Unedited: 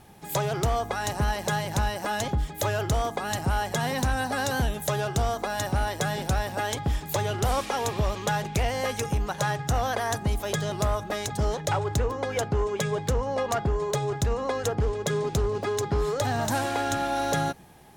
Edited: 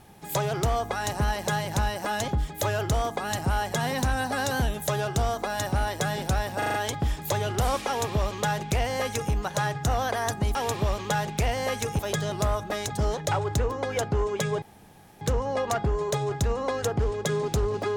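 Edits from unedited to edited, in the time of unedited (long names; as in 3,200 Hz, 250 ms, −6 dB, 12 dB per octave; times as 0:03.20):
0:06.58: stutter 0.04 s, 5 plays
0:07.72–0:09.16: duplicate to 0:10.39
0:13.02: splice in room tone 0.59 s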